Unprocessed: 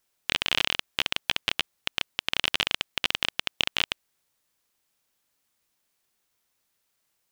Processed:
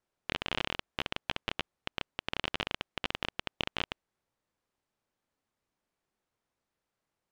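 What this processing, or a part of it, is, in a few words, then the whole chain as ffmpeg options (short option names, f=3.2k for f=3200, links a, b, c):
through cloth: -af "lowpass=9.5k,highshelf=f=2k:g=-16"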